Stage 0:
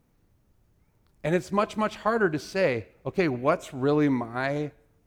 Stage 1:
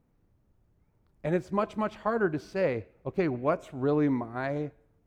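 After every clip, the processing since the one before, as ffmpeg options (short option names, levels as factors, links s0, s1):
-af "highshelf=f=2300:g=-11,volume=0.75"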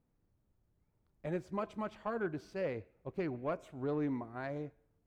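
-af "asoftclip=type=tanh:threshold=0.141,volume=0.376"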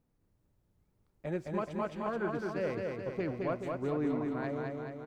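-af "aecho=1:1:214|428|642|856|1070|1284|1498|1712|1926:0.708|0.425|0.255|0.153|0.0917|0.055|0.033|0.0198|0.0119,volume=1.19"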